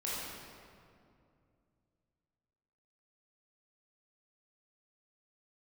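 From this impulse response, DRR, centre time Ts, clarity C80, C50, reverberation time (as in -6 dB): -8.0 dB, 144 ms, -1.0 dB, -3.5 dB, 2.4 s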